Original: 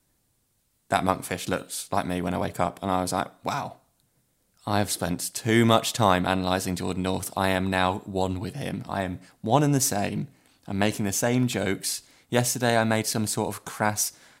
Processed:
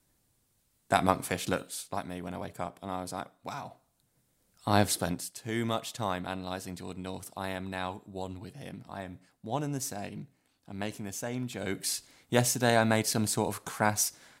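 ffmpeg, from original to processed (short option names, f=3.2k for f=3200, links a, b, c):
-af "volume=18.5dB,afade=t=out:st=1.4:d=0.65:silence=0.354813,afade=t=in:st=3.51:d=1.29:silence=0.281838,afade=t=out:st=4.8:d=0.54:silence=0.251189,afade=t=in:st=11.55:d=0.4:silence=0.334965"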